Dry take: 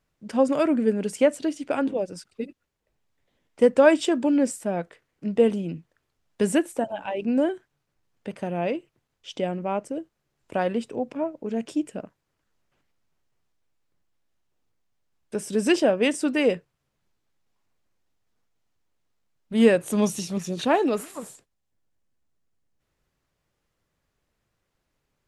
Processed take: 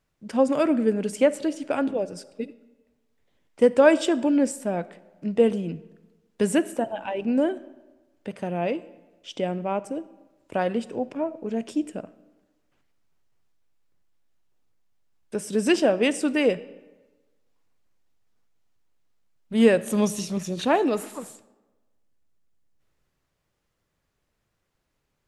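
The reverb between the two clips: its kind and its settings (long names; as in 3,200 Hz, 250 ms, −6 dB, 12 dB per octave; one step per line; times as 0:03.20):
comb and all-pass reverb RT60 1.2 s, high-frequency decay 0.7×, pre-delay 10 ms, DRR 17.5 dB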